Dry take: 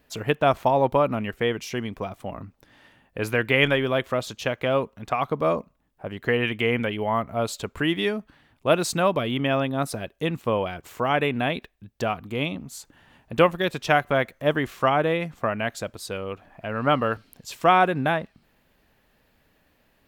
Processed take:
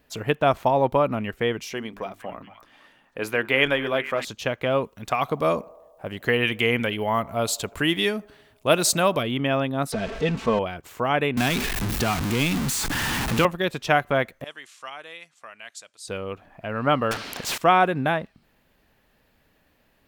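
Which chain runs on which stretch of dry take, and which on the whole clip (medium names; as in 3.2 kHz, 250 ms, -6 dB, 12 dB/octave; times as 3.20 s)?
1.73–4.25 s: peaking EQ 87 Hz -13 dB 1.5 oct + hum notches 50/100/150/200/250/300/350/400 Hz + repeats whose band climbs or falls 231 ms, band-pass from 1.1 kHz, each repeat 0.7 oct, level -9.5 dB
4.84–9.23 s: treble shelf 3.5 kHz +10.5 dB + band-passed feedback delay 81 ms, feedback 75%, band-pass 680 Hz, level -23 dB
9.92–10.59 s: jump at every zero crossing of -28.5 dBFS + distance through air 120 m + comb 4.5 ms, depth 52%
11.37–13.45 s: jump at every zero crossing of -21 dBFS + peaking EQ 570 Hz -8.5 dB 0.67 oct + three bands compressed up and down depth 40%
14.44–16.08 s: low-pass 9 kHz 24 dB/octave + differentiator + tape noise reduction on one side only encoder only
17.11–17.58 s: treble shelf 6.9 kHz -10 dB + overdrive pedal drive 32 dB, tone 2.9 kHz, clips at -13 dBFS + spectrum-flattening compressor 2:1
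whole clip: none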